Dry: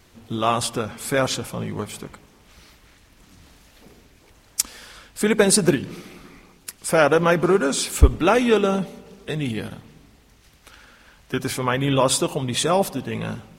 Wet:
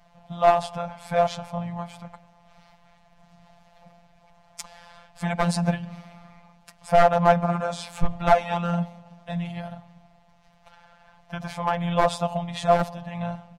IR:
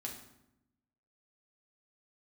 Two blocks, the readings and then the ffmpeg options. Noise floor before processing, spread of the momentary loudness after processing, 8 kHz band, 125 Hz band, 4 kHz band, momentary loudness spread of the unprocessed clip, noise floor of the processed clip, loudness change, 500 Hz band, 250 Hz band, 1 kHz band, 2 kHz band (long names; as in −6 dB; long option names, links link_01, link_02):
−55 dBFS, 19 LU, −17.0 dB, −3.0 dB, −10.0 dB, 17 LU, −58 dBFS, −3.5 dB, −3.0 dB, −6.0 dB, +2.0 dB, −6.5 dB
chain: -af "firequalizer=gain_entry='entry(200,0);entry(340,-30);entry(630,11);entry(1300,-4);entry(11000,-20)':delay=0.05:min_phase=1,aeval=exprs='clip(val(0),-1,0.237)':channel_layout=same,afftfilt=real='hypot(re,im)*cos(PI*b)':imag='0':win_size=1024:overlap=0.75,volume=1dB"